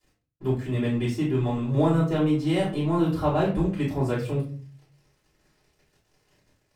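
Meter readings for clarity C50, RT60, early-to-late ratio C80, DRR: 6.5 dB, 0.40 s, 11.5 dB, −10.5 dB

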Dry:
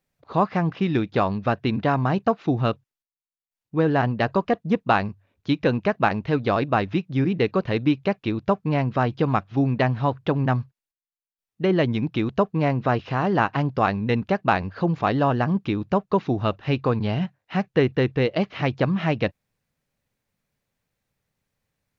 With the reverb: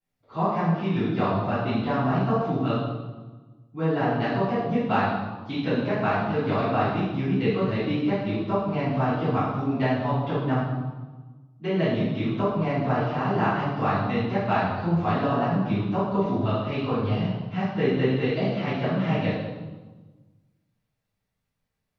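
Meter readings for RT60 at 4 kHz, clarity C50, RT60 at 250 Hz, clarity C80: 1.1 s, −1.0 dB, 1.7 s, 2.5 dB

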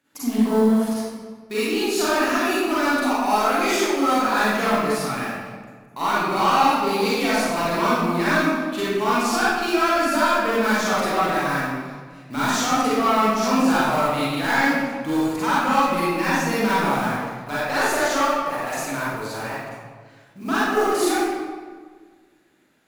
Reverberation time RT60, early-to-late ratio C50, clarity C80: 1.6 s, −5.5 dB, −1.0 dB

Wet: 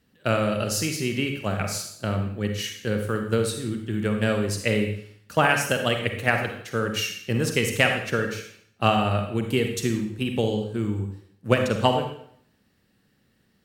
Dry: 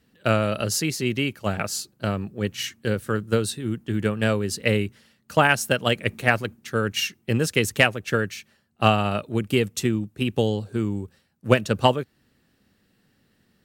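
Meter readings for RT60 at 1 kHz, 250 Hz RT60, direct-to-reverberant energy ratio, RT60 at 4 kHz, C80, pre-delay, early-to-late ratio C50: 0.65 s, 0.65 s, 4.0 dB, 0.60 s, 8.5 dB, 36 ms, 5.5 dB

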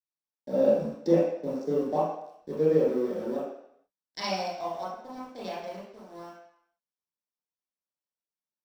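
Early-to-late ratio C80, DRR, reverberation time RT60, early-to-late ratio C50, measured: 4.5 dB, −8.5 dB, 0.70 s, 1.0 dB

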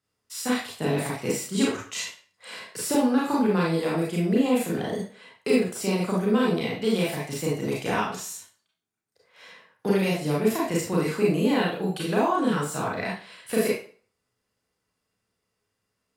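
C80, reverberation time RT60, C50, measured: 8.0 dB, 0.40 s, 2.5 dB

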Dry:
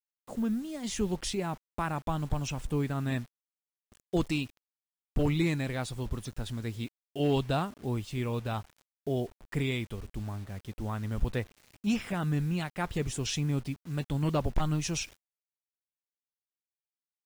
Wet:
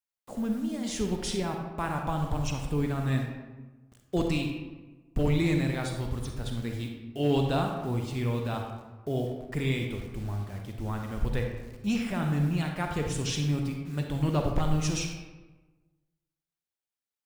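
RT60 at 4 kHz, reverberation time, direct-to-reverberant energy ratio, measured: 0.70 s, 1.2 s, 2.5 dB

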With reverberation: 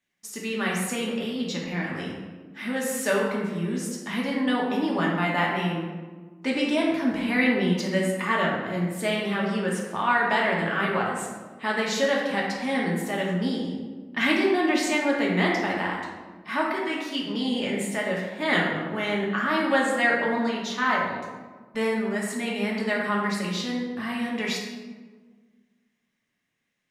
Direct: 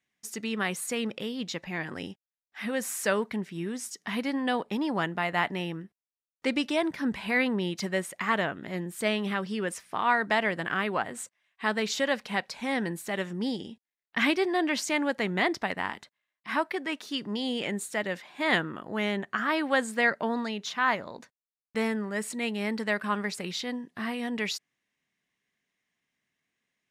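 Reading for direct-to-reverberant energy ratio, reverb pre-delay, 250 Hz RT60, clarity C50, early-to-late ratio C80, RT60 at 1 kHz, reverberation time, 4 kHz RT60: −3.5 dB, 3 ms, 2.0 s, 1.5 dB, 3.5 dB, 1.3 s, 1.5 s, 0.80 s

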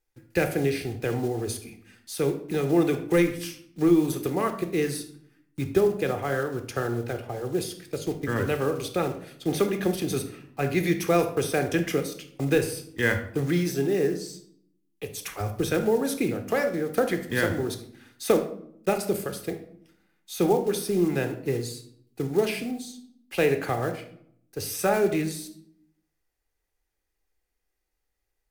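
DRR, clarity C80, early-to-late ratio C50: 7.0 dB, 14.0 dB, 10.0 dB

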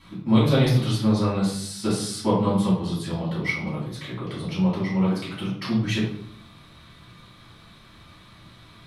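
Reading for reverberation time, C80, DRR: 0.65 s, 7.0 dB, −9.5 dB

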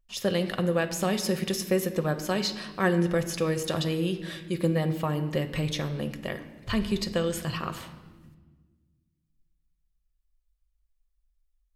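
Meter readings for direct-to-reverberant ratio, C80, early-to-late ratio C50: 6.5 dB, 13.5 dB, 11.5 dB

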